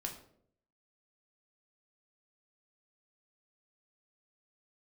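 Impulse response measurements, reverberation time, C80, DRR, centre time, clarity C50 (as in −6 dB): 0.65 s, 12.0 dB, 1.0 dB, 19 ms, 9.0 dB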